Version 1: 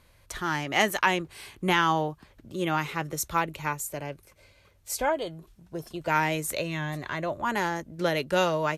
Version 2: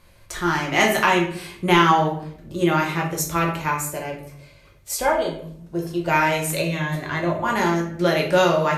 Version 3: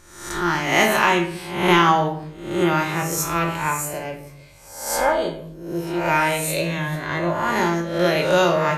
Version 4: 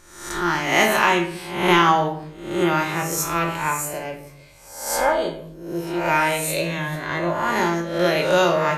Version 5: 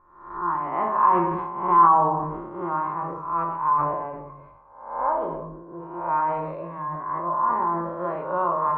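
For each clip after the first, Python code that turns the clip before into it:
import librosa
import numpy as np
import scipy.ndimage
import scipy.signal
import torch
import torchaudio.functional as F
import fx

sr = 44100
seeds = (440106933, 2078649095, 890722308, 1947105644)

y1 = fx.room_shoebox(x, sr, seeds[0], volume_m3=96.0, walls='mixed', distance_m=0.91)
y1 = y1 * 10.0 ** (3.0 / 20.0)
y2 = fx.spec_swells(y1, sr, rise_s=0.69)
y2 = y2 * 10.0 ** (-1.5 / 20.0)
y3 = fx.peak_eq(y2, sr, hz=96.0, db=-4.0, octaves=1.9)
y4 = fx.ladder_lowpass(y3, sr, hz=1100.0, resonance_pct=85)
y4 = fx.sustainer(y4, sr, db_per_s=40.0)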